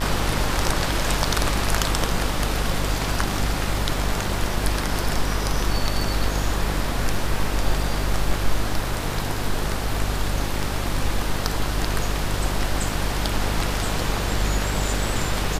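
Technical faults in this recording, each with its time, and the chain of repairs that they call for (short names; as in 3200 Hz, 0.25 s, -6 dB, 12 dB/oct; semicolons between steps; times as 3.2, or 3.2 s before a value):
buzz 50 Hz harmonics 30 -27 dBFS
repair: de-hum 50 Hz, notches 30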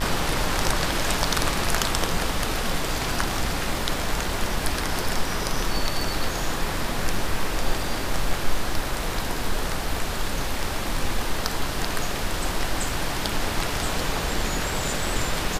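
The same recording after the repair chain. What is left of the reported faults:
none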